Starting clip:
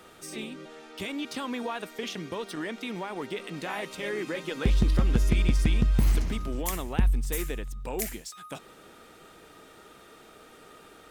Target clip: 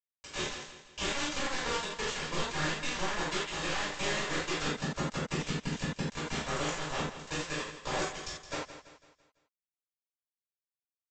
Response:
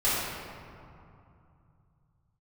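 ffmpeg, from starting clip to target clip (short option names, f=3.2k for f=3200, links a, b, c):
-filter_complex "[0:a]highpass=220,acompressor=threshold=-38dB:ratio=10,aresample=16000,acrusher=bits=5:mix=0:aa=0.000001,aresample=44100,aecho=1:1:167|334|501|668|835:0.251|0.116|0.0532|0.0244|0.0112[a];[1:a]atrim=start_sample=2205,afade=t=out:st=0.19:d=0.01,atrim=end_sample=8820,asetrate=61740,aresample=44100[b];[a][b]afir=irnorm=-1:irlink=0"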